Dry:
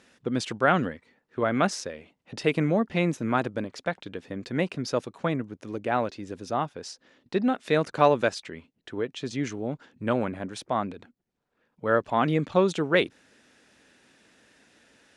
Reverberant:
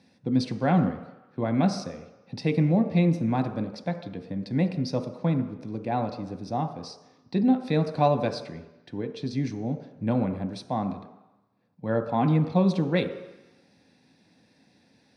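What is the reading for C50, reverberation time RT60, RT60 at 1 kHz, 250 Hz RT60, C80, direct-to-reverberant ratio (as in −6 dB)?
10.0 dB, 1.0 s, 1.1 s, 0.80 s, 11.5 dB, 6.0 dB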